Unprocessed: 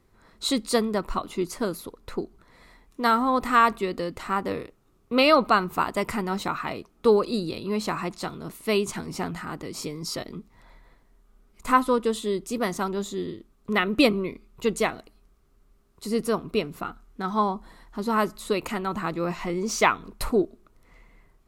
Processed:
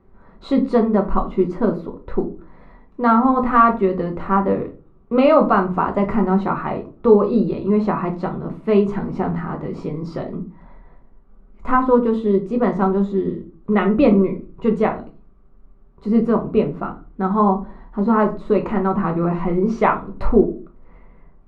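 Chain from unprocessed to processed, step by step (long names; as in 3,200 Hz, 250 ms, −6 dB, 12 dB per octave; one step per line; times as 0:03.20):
low-pass filter 1,200 Hz 12 dB per octave
in parallel at +1.5 dB: brickwall limiter −16 dBFS, peak gain reduction 7.5 dB
on the sum: rectangular room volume 150 cubic metres, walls furnished, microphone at 1.1 metres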